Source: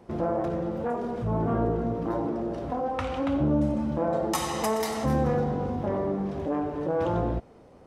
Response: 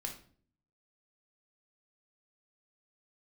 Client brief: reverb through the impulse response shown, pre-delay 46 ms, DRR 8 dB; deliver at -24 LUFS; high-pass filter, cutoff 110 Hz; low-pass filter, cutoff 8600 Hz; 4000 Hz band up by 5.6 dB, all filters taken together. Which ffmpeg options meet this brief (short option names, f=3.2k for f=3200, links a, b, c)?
-filter_complex "[0:a]highpass=110,lowpass=8.6k,equalizer=f=4k:t=o:g=7.5,asplit=2[a][b];[1:a]atrim=start_sample=2205,adelay=46[c];[b][c]afir=irnorm=-1:irlink=0,volume=-7.5dB[d];[a][d]amix=inputs=2:normalize=0,volume=3.5dB"